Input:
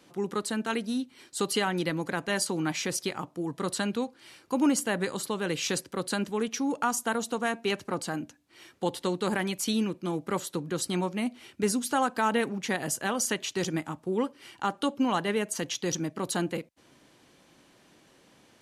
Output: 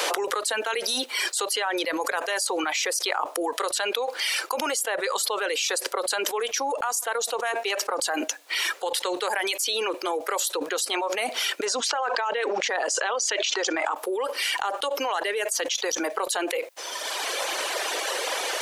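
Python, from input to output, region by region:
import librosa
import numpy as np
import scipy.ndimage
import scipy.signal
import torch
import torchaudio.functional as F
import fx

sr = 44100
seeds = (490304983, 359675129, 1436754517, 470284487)

y = fx.chain(x, sr, fx.lowpass(hz=6900.0, slope=24),
    fx.env_flatten(amount_pct=100), at=(11.65, 13.95))
y = fx.dereverb_blind(y, sr, rt60_s=1.1)
y = scipy.signal.sosfilt(scipy.signal.butter(6, 450.0, 'highpass', fs=sr, output='sos'), y)
y = fx.env_flatten(y, sr, amount_pct=100)
y = y * librosa.db_to_amplitude(-3.5)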